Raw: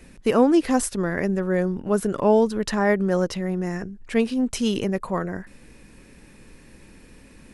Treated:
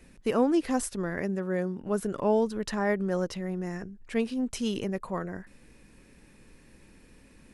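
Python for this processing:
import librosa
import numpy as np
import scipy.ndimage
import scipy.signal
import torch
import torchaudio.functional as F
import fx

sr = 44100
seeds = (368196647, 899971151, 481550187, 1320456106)

y = fx.highpass(x, sr, hz=fx.line((1.21, 45.0), (1.8, 140.0)), slope=12, at=(1.21, 1.8), fade=0.02)
y = y * 10.0 ** (-7.0 / 20.0)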